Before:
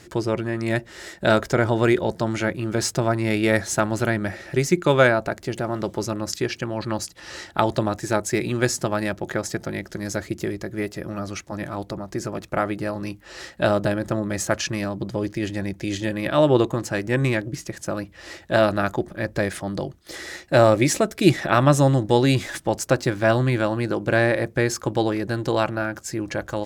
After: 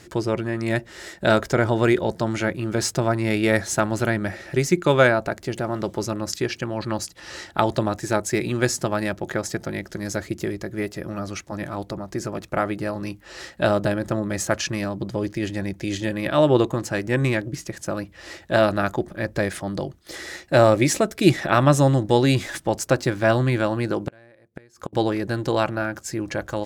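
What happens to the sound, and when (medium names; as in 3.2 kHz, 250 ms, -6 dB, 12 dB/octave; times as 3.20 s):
24.04–24.93 s: inverted gate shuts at -15 dBFS, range -32 dB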